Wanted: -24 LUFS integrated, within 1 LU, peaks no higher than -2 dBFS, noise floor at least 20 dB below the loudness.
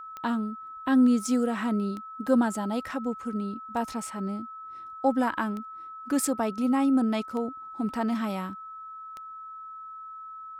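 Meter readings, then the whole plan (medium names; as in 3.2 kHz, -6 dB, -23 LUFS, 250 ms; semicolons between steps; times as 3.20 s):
clicks found 6; steady tone 1.3 kHz; tone level -39 dBFS; loudness -28.0 LUFS; peak level -12.0 dBFS; loudness target -24.0 LUFS
-> de-click; band-stop 1.3 kHz, Q 30; trim +4 dB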